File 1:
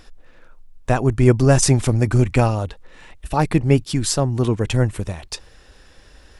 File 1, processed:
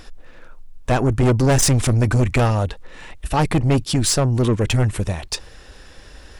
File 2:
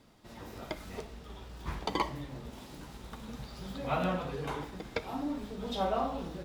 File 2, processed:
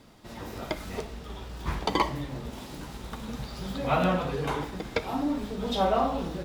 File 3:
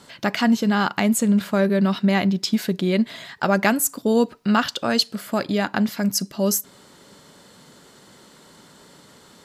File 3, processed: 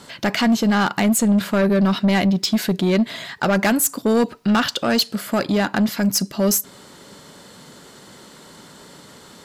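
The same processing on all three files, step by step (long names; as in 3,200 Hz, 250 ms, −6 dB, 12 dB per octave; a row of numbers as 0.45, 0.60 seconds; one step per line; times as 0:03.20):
soft clipping −17.5 dBFS
normalise the peak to −12 dBFS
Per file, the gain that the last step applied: +5.5, +7.0, +5.5 decibels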